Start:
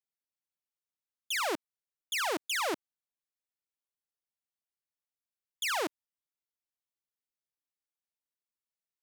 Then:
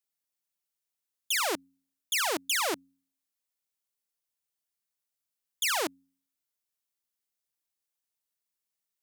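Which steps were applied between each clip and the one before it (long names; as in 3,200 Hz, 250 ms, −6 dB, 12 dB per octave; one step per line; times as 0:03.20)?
high-shelf EQ 4,300 Hz +8 dB
hum removal 90.42 Hz, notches 3
level +1 dB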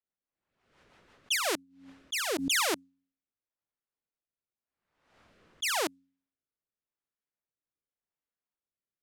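low-pass that shuts in the quiet parts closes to 1,600 Hz, open at −26 dBFS
rotating-speaker cabinet horn 6 Hz, later 0.9 Hz, at 0:01.13
background raised ahead of every attack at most 71 dB per second
level +2.5 dB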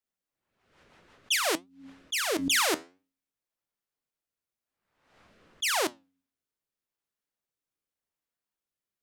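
flanger 0.55 Hz, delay 3.4 ms, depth 9.8 ms, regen +79%
level +7 dB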